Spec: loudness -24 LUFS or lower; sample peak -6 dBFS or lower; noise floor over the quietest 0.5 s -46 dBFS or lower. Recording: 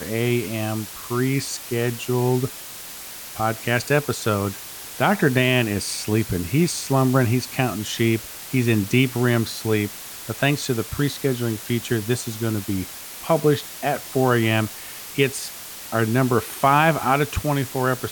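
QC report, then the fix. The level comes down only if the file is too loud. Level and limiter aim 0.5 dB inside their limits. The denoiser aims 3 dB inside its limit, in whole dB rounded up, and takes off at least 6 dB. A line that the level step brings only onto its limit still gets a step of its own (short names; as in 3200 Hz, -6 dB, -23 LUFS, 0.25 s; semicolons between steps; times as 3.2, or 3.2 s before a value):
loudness -22.0 LUFS: fail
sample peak -5.0 dBFS: fail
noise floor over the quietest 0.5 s -37 dBFS: fail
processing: denoiser 10 dB, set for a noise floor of -37 dBFS; gain -2.5 dB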